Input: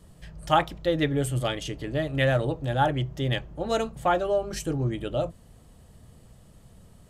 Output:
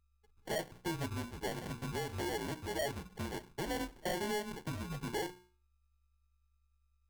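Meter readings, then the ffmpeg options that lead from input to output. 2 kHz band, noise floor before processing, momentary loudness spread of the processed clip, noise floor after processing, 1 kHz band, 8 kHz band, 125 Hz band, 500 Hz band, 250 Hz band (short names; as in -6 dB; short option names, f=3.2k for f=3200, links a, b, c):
-10.0 dB, -54 dBFS, 5 LU, -74 dBFS, -14.5 dB, -5.5 dB, -15.0 dB, -13.5 dB, -11.0 dB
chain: -filter_complex "[0:a]agate=range=-15dB:threshold=-40dB:ratio=16:detection=peak,afftdn=nr=35:nf=-46,acrossover=split=170|1500|2200[a][b][c][d];[b]bandreject=f=60:t=h:w=6,bandreject=f=120:t=h:w=6,bandreject=f=180:t=h:w=6,bandreject=f=240:t=h:w=6,bandreject=f=300:t=h:w=6,bandreject=f=360:t=h:w=6,bandreject=f=420:t=h:w=6,bandreject=f=480:t=h:w=6,bandreject=f=540:t=h:w=6[e];[c]alimiter=level_in=10.5dB:limit=-24dB:level=0:latency=1:release=71,volume=-10.5dB[f];[a][e][f][d]amix=inputs=4:normalize=0,aeval=exprs='val(0)+0.00141*(sin(2*PI*50*n/s)+sin(2*PI*2*50*n/s)/2+sin(2*PI*3*50*n/s)/3+sin(2*PI*4*50*n/s)/4+sin(2*PI*5*50*n/s)/5)':c=same,acompressor=threshold=-35dB:ratio=5,highpass=f=230:t=q:w=0.5412,highpass=f=230:t=q:w=1.307,lowpass=f=3.1k:t=q:w=0.5176,lowpass=f=3.1k:t=q:w=0.7071,lowpass=f=3.1k:t=q:w=1.932,afreqshift=-180,acrusher=samples=35:mix=1:aa=0.000001,acontrast=54,asoftclip=type=hard:threshold=-29dB,lowshelf=f=340:g=-4,volume=-2dB"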